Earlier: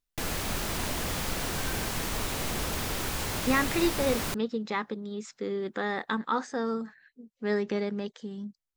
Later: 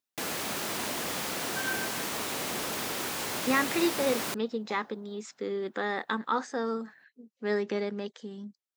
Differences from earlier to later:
second sound +10.5 dB; master: add high-pass 220 Hz 12 dB/octave

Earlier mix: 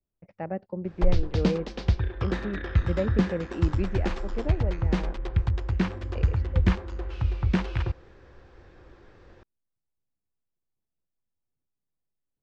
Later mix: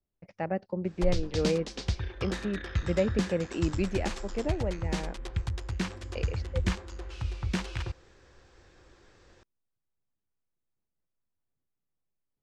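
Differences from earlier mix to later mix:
background -7.5 dB; master: remove tape spacing loss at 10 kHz 26 dB

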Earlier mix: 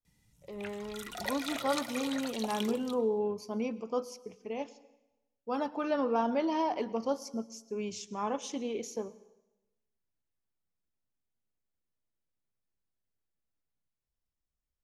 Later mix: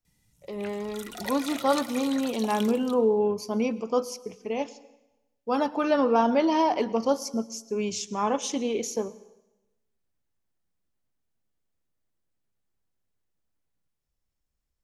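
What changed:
speech +7.5 dB; master: add treble shelf 5.7 kHz +5 dB

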